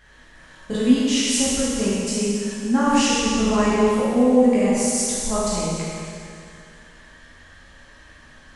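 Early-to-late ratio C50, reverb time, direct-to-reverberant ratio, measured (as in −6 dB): −4.0 dB, 2.4 s, −9.5 dB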